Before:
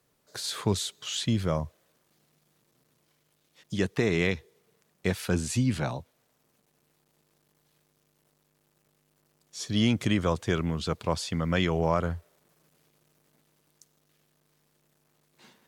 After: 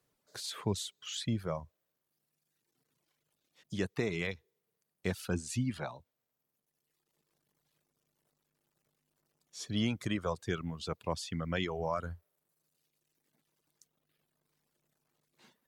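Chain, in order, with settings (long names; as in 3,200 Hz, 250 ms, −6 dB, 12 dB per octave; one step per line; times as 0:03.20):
reverb reduction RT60 1.5 s
level −6.5 dB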